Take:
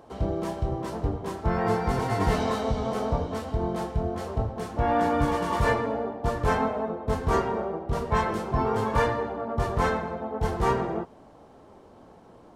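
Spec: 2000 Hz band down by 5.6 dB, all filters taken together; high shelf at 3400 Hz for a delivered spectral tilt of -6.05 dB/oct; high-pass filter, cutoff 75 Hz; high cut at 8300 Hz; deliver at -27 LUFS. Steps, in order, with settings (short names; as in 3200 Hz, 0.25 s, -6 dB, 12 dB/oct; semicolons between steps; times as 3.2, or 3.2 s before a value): HPF 75 Hz; LPF 8300 Hz; bell 2000 Hz -9 dB; high shelf 3400 Hz +6.5 dB; gain +1.5 dB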